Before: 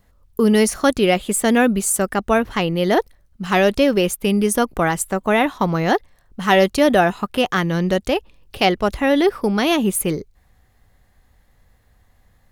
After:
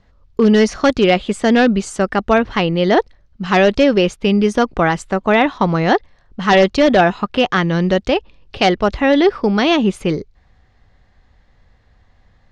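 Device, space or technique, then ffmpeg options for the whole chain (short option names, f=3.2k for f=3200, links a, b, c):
synthesiser wavefolder: -af "aeval=exprs='0.422*(abs(mod(val(0)/0.422+3,4)-2)-1)':c=same,lowpass=f=5.5k:w=0.5412,lowpass=f=5.5k:w=1.3066,volume=3.5dB"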